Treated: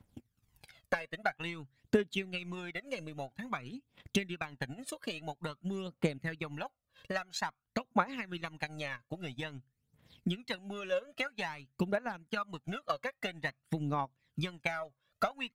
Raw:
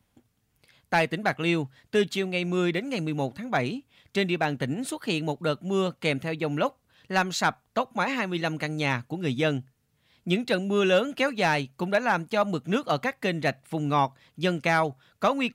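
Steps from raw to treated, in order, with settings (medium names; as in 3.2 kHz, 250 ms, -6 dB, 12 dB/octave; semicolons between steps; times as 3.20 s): dynamic bell 1.6 kHz, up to +5 dB, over -38 dBFS, Q 1.1; compression 4:1, threshold -37 dBFS, peak gain reduction 18 dB; transient shaper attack +8 dB, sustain -10 dB; phaser 0.5 Hz, delay 1.9 ms, feedback 66%; trim -4.5 dB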